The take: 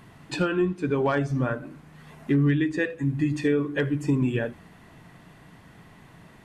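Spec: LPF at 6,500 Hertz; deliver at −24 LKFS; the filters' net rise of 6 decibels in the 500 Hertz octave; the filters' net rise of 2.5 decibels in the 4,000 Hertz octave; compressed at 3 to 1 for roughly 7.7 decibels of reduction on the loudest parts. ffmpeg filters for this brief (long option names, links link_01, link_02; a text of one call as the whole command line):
ffmpeg -i in.wav -af "lowpass=6500,equalizer=frequency=500:width_type=o:gain=7.5,equalizer=frequency=4000:width_type=o:gain=3.5,acompressor=threshold=-26dB:ratio=3,volume=5dB" out.wav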